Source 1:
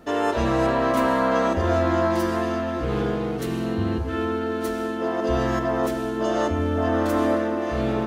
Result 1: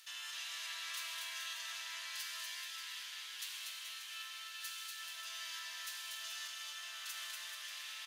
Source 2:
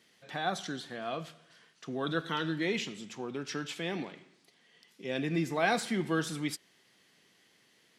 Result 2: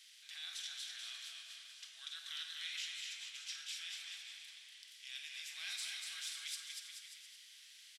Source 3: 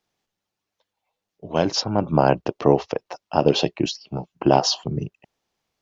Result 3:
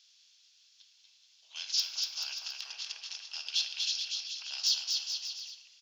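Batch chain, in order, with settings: per-bin compression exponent 0.6; in parallel at -12 dB: soft clip -15.5 dBFS; on the sum: ladder high-pass 2400 Hz, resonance 20%; wavefolder -14 dBFS; on a send: bouncing-ball echo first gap 0.24 s, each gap 0.8×, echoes 5; on the sum: shoebox room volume 970 m³, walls mixed, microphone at 0.66 m; gain -5 dB

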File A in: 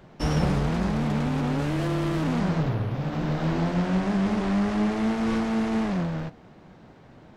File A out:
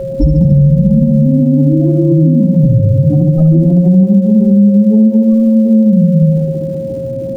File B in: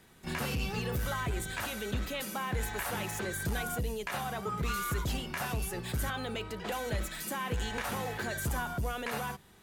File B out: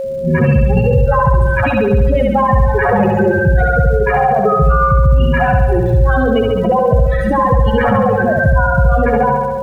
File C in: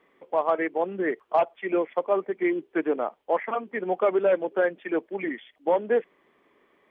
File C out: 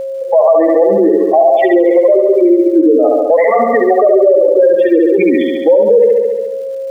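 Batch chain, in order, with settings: spectral contrast raised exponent 3.4; gate with hold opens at -53 dBFS; low-pass opened by the level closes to 850 Hz, open at -25 dBFS; bell 1500 Hz -3.5 dB 0.52 oct; flutter echo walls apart 11.9 m, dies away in 1.1 s; compressor 1.5:1, threshold -37 dBFS; crackle 590/s -61 dBFS; whine 540 Hz -42 dBFS; maximiser +25 dB; ending taper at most 220 dB/s; gain -1 dB

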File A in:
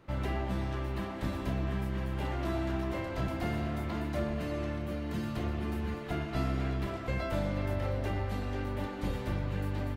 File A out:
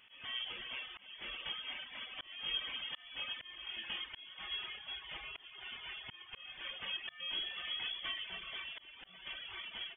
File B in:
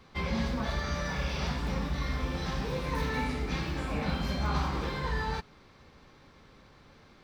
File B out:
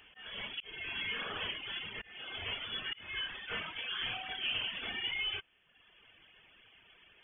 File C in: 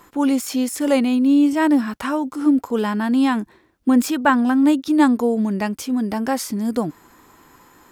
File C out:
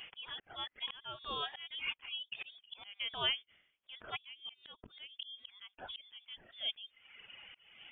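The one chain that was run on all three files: steep high-pass 570 Hz 36 dB/oct; reverb removal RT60 1.1 s; dynamic EQ 720 Hz, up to +7 dB, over -48 dBFS, Q 7.1; compressor 10:1, threshold -33 dBFS; auto swell 0.343 s; inverted band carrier 3900 Hz; gain +2.5 dB

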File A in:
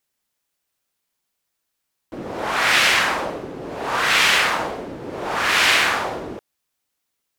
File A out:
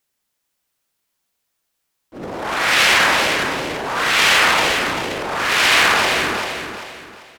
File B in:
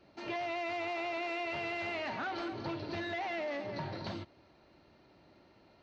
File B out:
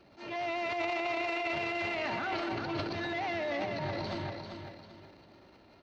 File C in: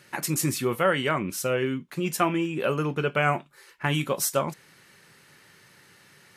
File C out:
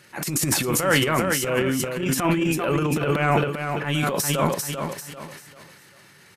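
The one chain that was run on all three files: feedback echo 0.392 s, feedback 34%, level -7 dB; transient shaper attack -11 dB, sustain +11 dB; gain +2.5 dB

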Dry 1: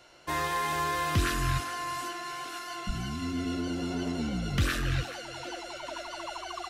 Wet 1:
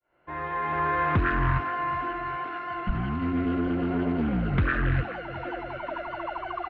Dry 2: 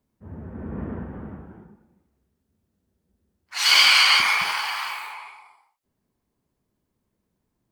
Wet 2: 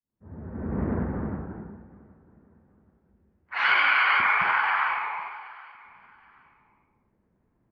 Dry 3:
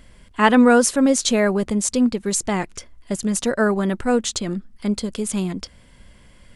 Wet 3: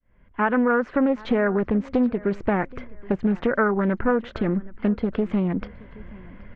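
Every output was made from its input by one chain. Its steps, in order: opening faded in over 1.04 s; LPF 2100 Hz 24 dB/oct; dynamic EQ 1500 Hz, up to +6 dB, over -41 dBFS, Q 4.7; compressor 4:1, threshold -25 dBFS; on a send: feedback echo 0.774 s, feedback 32%, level -22 dB; on the sum: Doppler distortion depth 0.27 ms; gain +6 dB

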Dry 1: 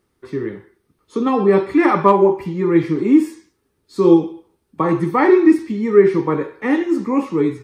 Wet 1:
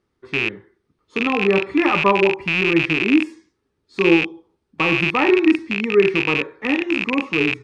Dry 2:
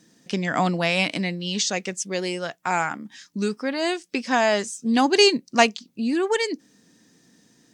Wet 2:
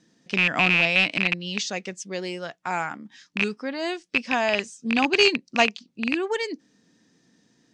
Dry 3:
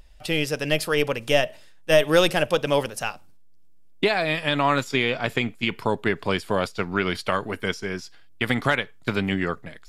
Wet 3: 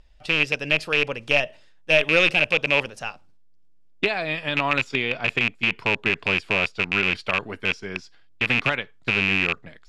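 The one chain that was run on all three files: rattling part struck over -29 dBFS, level -7 dBFS; LPF 5900 Hz 12 dB/oct; dynamic EQ 2600 Hz, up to +6 dB, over -34 dBFS, Q 5; gain -4 dB

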